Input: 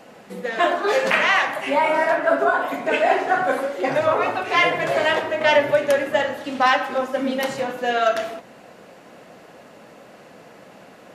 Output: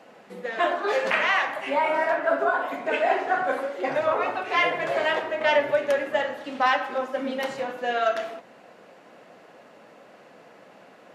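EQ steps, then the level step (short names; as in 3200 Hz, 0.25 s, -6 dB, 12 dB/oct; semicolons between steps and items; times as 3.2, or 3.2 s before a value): HPF 63 Hz; low shelf 180 Hz -10.5 dB; high shelf 5600 Hz -9.5 dB; -3.5 dB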